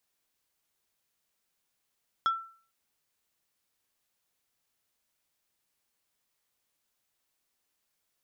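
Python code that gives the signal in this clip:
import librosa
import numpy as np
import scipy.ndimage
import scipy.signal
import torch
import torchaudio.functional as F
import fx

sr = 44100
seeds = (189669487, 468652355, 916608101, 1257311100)

y = fx.strike_wood(sr, length_s=0.45, level_db=-20.5, body='plate', hz=1340.0, decay_s=0.45, tilt_db=11, modes=5)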